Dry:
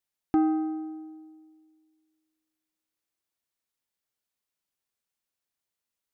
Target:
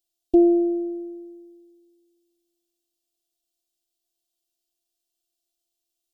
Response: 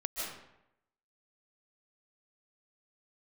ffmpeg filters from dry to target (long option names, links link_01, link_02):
-af "afftfilt=real='hypot(re,im)*cos(PI*b)':imag='0':win_size=512:overlap=0.75,asuperstop=centerf=1500:order=8:qfactor=0.73,volume=9dB"